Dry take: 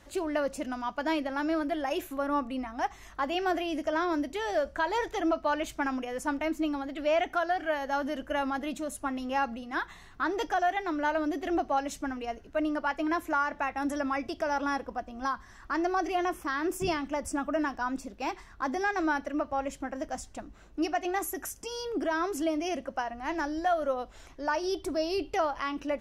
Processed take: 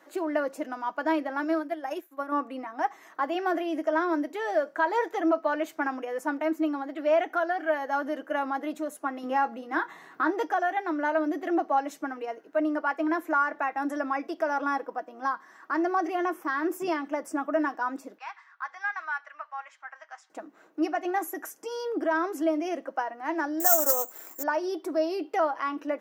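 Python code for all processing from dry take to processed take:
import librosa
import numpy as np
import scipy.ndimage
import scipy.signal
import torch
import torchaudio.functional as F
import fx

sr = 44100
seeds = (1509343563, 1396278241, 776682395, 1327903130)

y = fx.chain(x, sr, fx.high_shelf(hz=4600.0, db=7.5),
    fx.upward_expand(threshold_db=-41.0, expansion=2.5), at=(1.44, 2.32))
y = fx.chain(y, sr, fx.low_shelf(hz=170.0, db=12.0),
    fx.doubler(ms=23.0, db=-12.0),
    fx.band_squash(depth_pct=40), at=(9.23, 10.31))
y = fx.chain(y, sr, fx.highpass(hz=1100.0, slope=24),
    fx.air_absorb(metres=130.0), at=(18.18, 20.3))
y = fx.chain(y, sr, fx.resample_bad(factor=6, down='none', up='zero_stuff'),
    fx.doppler_dist(depth_ms=0.13), at=(23.6, 24.43))
y = scipy.signal.sosfilt(scipy.signal.butter(4, 280.0, 'highpass', fs=sr, output='sos'), y)
y = fx.band_shelf(y, sr, hz=5100.0, db=-8.5, octaves=2.4)
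y = y + 0.35 * np.pad(y, (int(6.3 * sr / 1000.0), 0))[:len(y)]
y = y * 10.0 ** (2.0 / 20.0)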